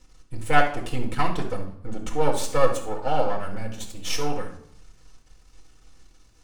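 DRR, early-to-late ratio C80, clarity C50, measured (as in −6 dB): −2.0 dB, 11.5 dB, 7.0 dB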